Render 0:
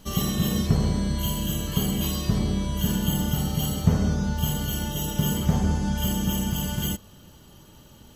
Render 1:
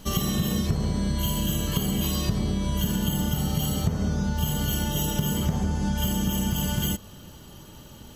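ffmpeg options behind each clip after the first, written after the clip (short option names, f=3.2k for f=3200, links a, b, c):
-af "acompressor=threshold=-26dB:ratio=6,volume=4.5dB"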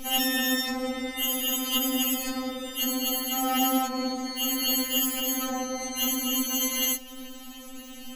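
-af "afftfilt=real='re*3.46*eq(mod(b,12),0)':imag='im*3.46*eq(mod(b,12),0)':win_size=2048:overlap=0.75,volume=8dB"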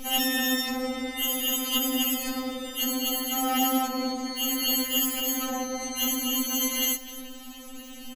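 -af "aecho=1:1:253:0.141"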